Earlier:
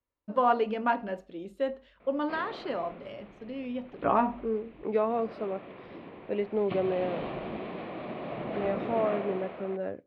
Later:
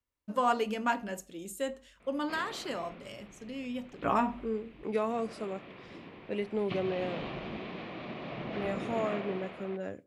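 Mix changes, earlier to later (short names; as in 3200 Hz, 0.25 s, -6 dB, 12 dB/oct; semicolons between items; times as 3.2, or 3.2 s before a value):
speech: send +6.0 dB; master: remove EQ curve 140 Hz 0 dB, 610 Hz +6 dB, 4200 Hz -5 dB, 7400 Hz -27 dB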